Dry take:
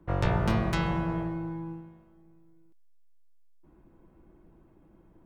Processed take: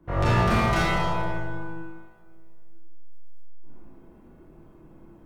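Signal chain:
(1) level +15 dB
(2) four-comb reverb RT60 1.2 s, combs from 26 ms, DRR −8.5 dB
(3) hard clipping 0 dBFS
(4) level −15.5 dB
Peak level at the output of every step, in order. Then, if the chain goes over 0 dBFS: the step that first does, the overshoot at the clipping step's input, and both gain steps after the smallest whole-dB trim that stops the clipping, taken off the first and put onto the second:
+2.5, +7.5, 0.0, −15.5 dBFS
step 1, 7.5 dB
step 1 +7 dB, step 4 −7.5 dB

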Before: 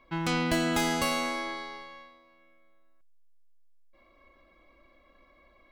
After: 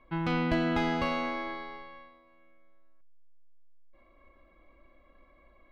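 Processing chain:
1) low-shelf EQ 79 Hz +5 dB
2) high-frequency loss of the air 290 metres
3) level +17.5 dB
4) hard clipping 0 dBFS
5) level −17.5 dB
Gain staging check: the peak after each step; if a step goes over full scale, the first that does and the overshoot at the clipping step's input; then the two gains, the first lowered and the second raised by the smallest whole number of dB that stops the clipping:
−12.5, −14.5, +3.0, 0.0, −17.5 dBFS
step 3, 3.0 dB
step 3 +14.5 dB, step 5 −14.5 dB

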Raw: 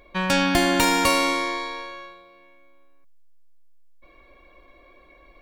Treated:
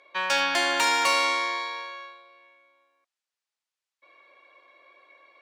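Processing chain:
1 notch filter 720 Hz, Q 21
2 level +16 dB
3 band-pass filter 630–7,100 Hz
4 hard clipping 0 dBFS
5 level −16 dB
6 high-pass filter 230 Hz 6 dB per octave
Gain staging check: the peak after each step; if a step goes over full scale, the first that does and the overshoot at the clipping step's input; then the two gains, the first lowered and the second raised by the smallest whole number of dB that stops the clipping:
−5.0, +11.0, +8.5, 0.0, −16.0, −14.0 dBFS
step 2, 8.5 dB
step 2 +7 dB, step 5 −7 dB

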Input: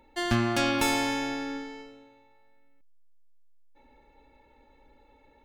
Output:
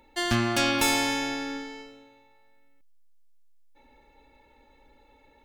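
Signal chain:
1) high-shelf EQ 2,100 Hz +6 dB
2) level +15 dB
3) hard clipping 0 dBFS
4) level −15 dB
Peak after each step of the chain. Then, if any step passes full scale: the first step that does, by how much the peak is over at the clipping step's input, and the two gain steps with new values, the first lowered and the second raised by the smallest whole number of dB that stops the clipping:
−9.0, +6.0, 0.0, −15.0 dBFS
step 2, 6.0 dB
step 2 +9 dB, step 4 −9 dB

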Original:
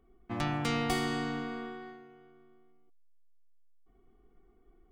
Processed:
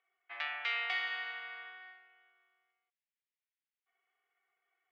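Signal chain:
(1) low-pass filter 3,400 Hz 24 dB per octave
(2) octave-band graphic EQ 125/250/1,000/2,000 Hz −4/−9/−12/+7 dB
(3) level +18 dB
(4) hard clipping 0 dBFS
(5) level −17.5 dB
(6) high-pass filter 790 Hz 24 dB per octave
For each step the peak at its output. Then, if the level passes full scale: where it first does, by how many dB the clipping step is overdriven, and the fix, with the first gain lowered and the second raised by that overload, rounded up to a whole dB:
−18.5, −19.5, −1.5, −1.5, −19.0, −22.0 dBFS
no step passes full scale

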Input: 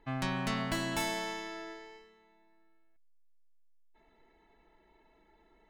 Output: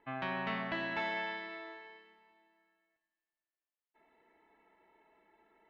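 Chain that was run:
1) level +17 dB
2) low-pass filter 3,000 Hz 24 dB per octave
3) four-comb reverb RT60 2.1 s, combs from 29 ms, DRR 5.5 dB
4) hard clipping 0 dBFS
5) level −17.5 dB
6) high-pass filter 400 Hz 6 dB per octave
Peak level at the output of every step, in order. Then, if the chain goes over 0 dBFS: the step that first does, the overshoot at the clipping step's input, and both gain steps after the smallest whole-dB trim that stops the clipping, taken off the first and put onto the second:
−3.0, −4.0, −4.0, −4.0, −21.5, −23.5 dBFS
no step passes full scale

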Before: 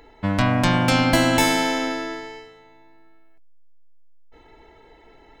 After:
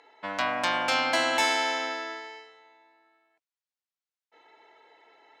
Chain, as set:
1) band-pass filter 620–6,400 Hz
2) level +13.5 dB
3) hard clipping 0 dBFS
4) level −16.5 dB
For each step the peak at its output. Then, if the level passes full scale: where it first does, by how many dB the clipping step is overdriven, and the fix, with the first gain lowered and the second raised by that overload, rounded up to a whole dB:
−7.5, +6.0, 0.0, −16.5 dBFS
step 2, 6.0 dB
step 2 +7.5 dB, step 4 −10.5 dB

